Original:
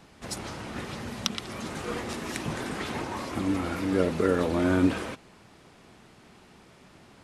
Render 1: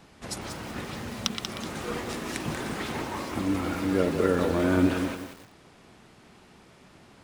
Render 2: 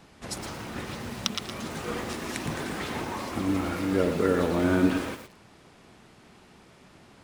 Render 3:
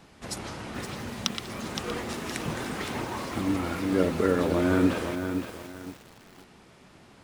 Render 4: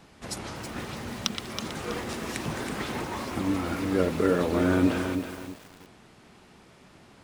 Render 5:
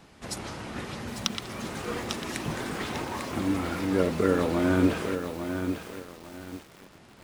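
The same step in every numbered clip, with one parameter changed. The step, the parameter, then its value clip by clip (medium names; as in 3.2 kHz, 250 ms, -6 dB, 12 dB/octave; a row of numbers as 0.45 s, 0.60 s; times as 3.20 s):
bit-crushed delay, time: 187 ms, 114 ms, 517 ms, 324 ms, 848 ms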